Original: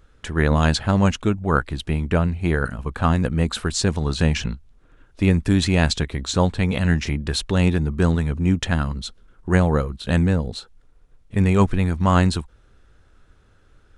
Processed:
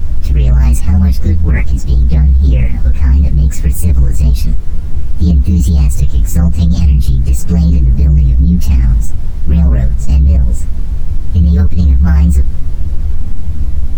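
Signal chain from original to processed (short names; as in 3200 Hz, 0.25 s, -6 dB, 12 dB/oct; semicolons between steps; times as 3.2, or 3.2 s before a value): inharmonic rescaling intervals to 123%; added noise brown -33 dBFS; low shelf 87 Hz +7 dB; chorus voices 4, 0.48 Hz, delay 14 ms, depth 2.5 ms; tone controls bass +13 dB, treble +4 dB; maximiser +7 dB; gain -1 dB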